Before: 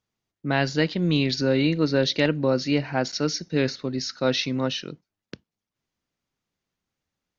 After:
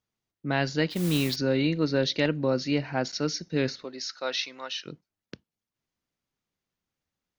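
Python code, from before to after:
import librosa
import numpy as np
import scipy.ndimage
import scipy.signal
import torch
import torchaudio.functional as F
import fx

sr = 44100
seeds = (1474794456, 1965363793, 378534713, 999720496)

y = fx.mod_noise(x, sr, seeds[0], snr_db=14, at=(0.9, 1.36))
y = fx.highpass(y, sr, hz=fx.line((3.83, 430.0), (4.85, 1100.0)), slope=12, at=(3.83, 4.85), fade=0.02)
y = y * 10.0 ** (-3.5 / 20.0)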